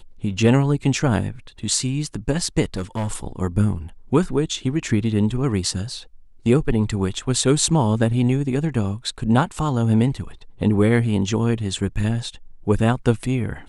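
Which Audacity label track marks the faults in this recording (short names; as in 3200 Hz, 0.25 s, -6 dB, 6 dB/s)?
2.630000	3.110000	clipped -20 dBFS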